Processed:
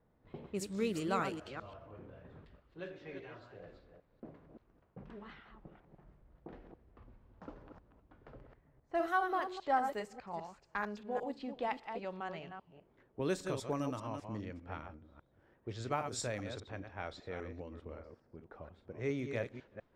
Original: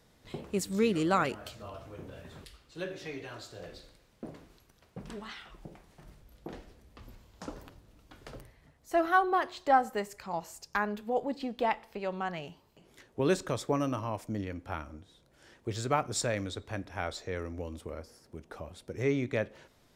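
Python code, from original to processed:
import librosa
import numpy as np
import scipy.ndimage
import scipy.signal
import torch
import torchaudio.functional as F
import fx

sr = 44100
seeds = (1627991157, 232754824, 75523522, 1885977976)

y = fx.reverse_delay(x, sr, ms=200, wet_db=-7)
y = fx.env_lowpass(y, sr, base_hz=1200.0, full_db=-26.0)
y = y * 10.0 ** (-7.5 / 20.0)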